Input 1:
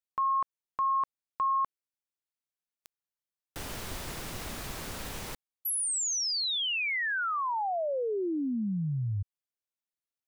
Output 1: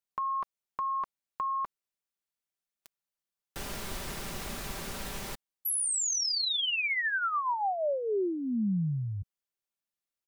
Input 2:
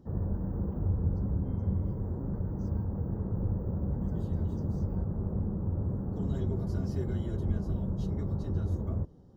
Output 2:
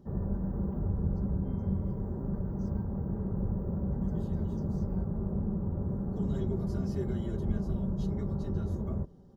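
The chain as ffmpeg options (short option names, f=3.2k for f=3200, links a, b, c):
-af "aecho=1:1:5.1:0.38"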